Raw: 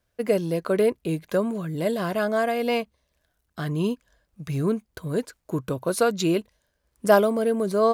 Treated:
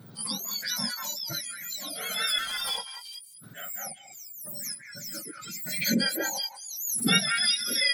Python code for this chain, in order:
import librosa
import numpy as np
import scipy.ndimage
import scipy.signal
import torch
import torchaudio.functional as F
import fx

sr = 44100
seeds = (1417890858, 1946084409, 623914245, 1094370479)

p1 = fx.octave_mirror(x, sr, pivot_hz=1500.0)
p2 = fx.noise_reduce_blind(p1, sr, reduce_db=16)
p3 = fx.hpss(p2, sr, part='percussive', gain_db=-6)
p4 = fx.tube_stage(p3, sr, drive_db=36.0, bias=0.35, at=(2.38, 2.78))
p5 = fx.low_shelf(p4, sr, hz=300.0, db=12.0, at=(3.86, 5.82))
p6 = p5 + fx.echo_stepped(p5, sr, ms=188, hz=1600.0, octaves=1.4, feedback_pct=70, wet_db=0.0, dry=0)
y = fx.pre_swell(p6, sr, db_per_s=43.0)